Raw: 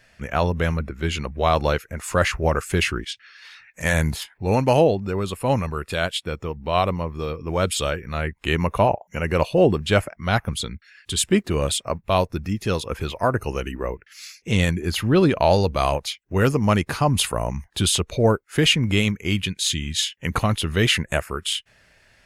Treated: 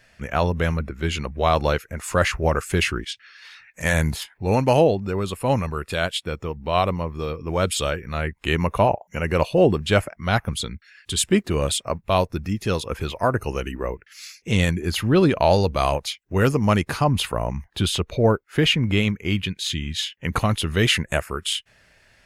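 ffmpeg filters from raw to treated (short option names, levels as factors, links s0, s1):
-filter_complex "[0:a]asettb=1/sr,asplit=3[s0][s1][s2];[s0]atrim=end=17.044[s3];[s1]atrim=start=17.04:end=20.33,asetpts=PTS-STARTPTS,afade=t=in:d=0.004:c=qsin,afade=t=out:st=3.286:d=0.004:c=qsin,equalizer=f=8600:w=0.73:g=-9.5[s4];[s2]atrim=start=20.326[s5];[s3][s4]acrossfade=d=0.004:c1=hsin:c2=qsin[s6];[s6][s5]acrossfade=d=0.004:c1=qsin:c2=hsin"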